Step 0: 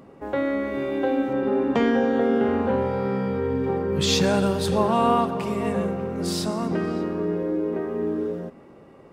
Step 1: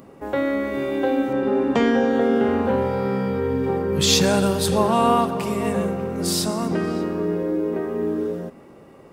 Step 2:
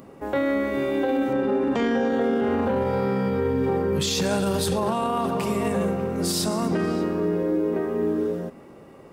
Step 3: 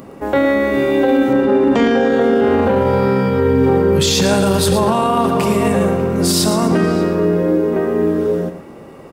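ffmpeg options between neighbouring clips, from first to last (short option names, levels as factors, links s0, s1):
-af "highshelf=f=6600:g=11,volume=1.26"
-af "alimiter=limit=0.168:level=0:latency=1:release=14"
-af "aecho=1:1:114:0.316,volume=2.82"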